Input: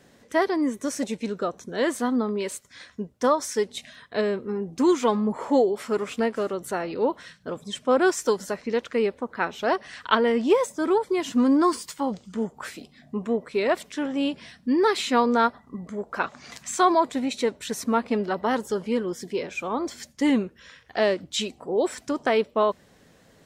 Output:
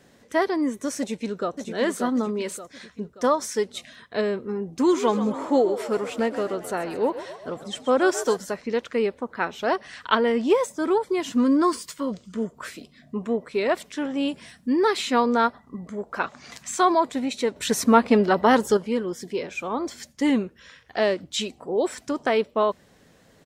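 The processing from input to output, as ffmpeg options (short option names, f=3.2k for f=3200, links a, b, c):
-filter_complex "[0:a]asplit=2[a][b];[b]afade=t=in:st=0.99:d=0.01,afade=t=out:st=1.7:d=0.01,aecho=0:1:580|1160|1740|2320|2900:0.473151|0.212918|0.0958131|0.0431159|0.0194022[c];[a][c]amix=inputs=2:normalize=0,asettb=1/sr,asplit=3[d][e][f];[d]atrim=end=4.724[g];[e]atrim=start=4.72:end=8.38,asetpts=PTS-STARTPTS,afade=t=in:d=0.004:c=qsin,afade=t=out:st=3.656:d=0.004:c=qsin,asplit=7[h][i][j][k][l][m][n];[i]adelay=131,afreqshift=55,volume=-12.5dB[o];[j]adelay=262,afreqshift=110,volume=-17.2dB[p];[k]adelay=393,afreqshift=165,volume=-22dB[q];[l]adelay=524,afreqshift=220,volume=-26.7dB[r];[m]adelay=655,afreqshift=275,volume=-31.4dB[s];[n]adelay=786,afreqshift=330,volume=-36.2dB[t];[h][o][p][q][r][s][t]amix=inputs=7:normalize=0,atrim=end_sample=161406[u];[f]atrim=start=8.376[v];[g][u]acrossfade=d=0.004:c1=hsin:c2=qsin[w];[w][v]acrossfade=d=0.004:c1=qsin:c2=hsin,asettb=1/sr,asplit=3[x][y][z];[x]atrim=end=11.364[aa];[y]atrim=start=11.36:end=13.16,asetpts=PTS-STARTPTS,afade=t=in:d=0.004:c=qsin,afade=t=out:st=1.796:d=0.004:c=qsin,asuperstop=centerf=820:order=4:qfactor=4.2[ab];[z]atrim=start=13.156[ac];[aa][ab]acrossfade=d=0.004:c1=hsin:c2=qsin[ad];[ad][ac]acrossfade=d=0.004:c1=qsin:c2=hsin,asettb=1/sr,asplit=3[ae][af][ag];[ae]atrim=end=14.284[ah];[af]atrim=start=14.28:end=14.81,asetpts=PTS-STARTPTS,afade=t=in:d=0.004:c=qsin,afade=t=out:st=0.526:d=0.004:c=qsin,highshelf=f=6.2k:t=q:w=1.5:g=7[ai];[ag]atrim=start=14.806[aj];[ah][ai]acrossfade=d=0.004:c1=hsin:c2=qsin[ak];[ak][aj]acrossfade=d=0.004:c1=qsin:c2=hsin,asplit=3[al][am][an];[al]atrim=end=17.562[ao];[am]atrim=start=17.558:end=18.772,asetpts=PTS-STARTPTS,volume=7dB[ap];[an]atrim=start=18.768[aq];[ao][ap]acrossfade=d=0.004:c1=hsin:c2=hsin[ar];[ar][aq]acrossfade=d=0.004:c1=hsin:c2=hsin"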